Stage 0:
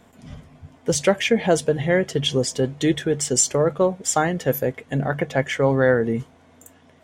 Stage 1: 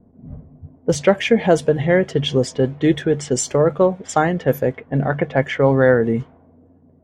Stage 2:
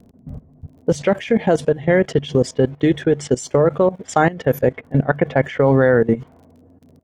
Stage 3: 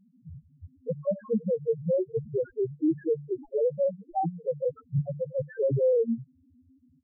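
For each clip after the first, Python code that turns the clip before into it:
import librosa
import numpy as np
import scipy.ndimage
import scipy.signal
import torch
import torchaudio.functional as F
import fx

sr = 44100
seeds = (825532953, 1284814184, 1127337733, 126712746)

y1 = fx.env_lowpass(x, sr, base_hz=340.0, full_db=-17.0)
y1 = fx.high_shelf(y1, sr, hz=4000.0, db=-11.5)
y1 = y1 * 10.0 ** (4.0 / 20.0)
y2 = fx.dmg_crackle(y1, sr, seeds[0], per_s=31.0, level_db=-43.0)
y2 = fx.level_steps(y2, sr, step_db=18)
y2 = y2 * 10.0 ** (5.0 / 20.0)
y3 = fx.sample_hold(y2, sr, seeds[1], rate_hz=3500.0, jitter_pct=0)
y3 = fx.spec_topn(y3, sr, count=1)
y3 = y3 * 10.0 ** (-2.5 / 20.0)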